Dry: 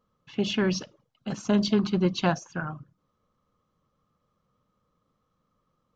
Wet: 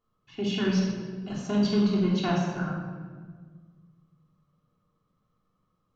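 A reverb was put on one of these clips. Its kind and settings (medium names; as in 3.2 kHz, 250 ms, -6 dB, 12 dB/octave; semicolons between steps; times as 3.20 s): simulated room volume 1600 m³, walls mixed, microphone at 3.3 m; trim -8 dB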